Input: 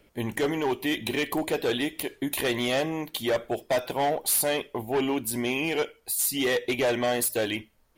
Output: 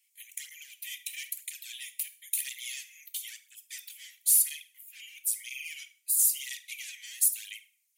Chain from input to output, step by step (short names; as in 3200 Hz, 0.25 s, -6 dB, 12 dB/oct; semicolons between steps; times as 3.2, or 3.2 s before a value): steep high-pass 2100 Hz 48 dB/oct; resonant high shelf 5500 Hz +9 dB, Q 1.5; on a send at -11 dB: reverb RT60 0.55 s, pre-delay 4 ms; on the sum: tape flanging out of phase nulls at 1 Hz, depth 4.4 ms; gain -4.5 dB